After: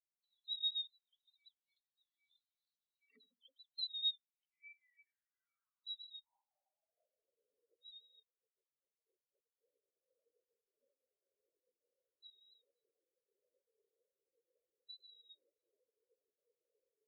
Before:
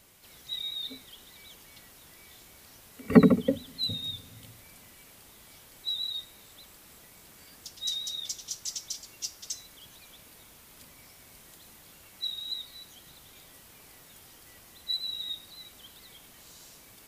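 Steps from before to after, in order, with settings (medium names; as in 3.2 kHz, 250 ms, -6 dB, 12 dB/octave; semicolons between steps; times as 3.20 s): 8.23–9.61 s: level held to a coarse grid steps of 18 dB; transient shaper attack -2 dB, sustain +3 dB; band-pass sweep 3.9 kHz -> 480 Hz, 3.71–7.44 s; compression 8:1, threshold -58 dBFS, peak gain reduction 26.5 dB; spectral contrast expander 4:1; trim +16 dB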